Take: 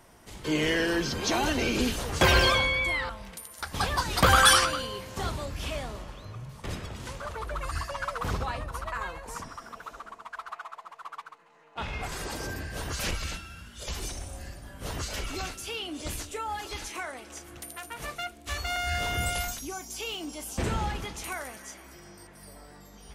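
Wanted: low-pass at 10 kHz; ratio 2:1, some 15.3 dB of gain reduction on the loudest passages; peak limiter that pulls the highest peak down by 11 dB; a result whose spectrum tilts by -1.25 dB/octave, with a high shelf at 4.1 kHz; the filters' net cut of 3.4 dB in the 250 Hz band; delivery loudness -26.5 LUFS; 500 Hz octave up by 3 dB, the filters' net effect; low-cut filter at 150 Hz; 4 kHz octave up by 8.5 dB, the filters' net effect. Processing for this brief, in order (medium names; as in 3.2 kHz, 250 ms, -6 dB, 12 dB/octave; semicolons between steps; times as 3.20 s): high-pass 150 Hz; low-pass 10 kHz; peaking EQ 250 Hz -6.5 dB; peaking EQ 500 Hz +5 dB; peaking EQ 4 kHz +8.5 dB; treble shelf 4.1 kHz +4.5 dB; compression 2:1, threshold -37 dBFS; trim +10 dB; peak limiter -16 dBFS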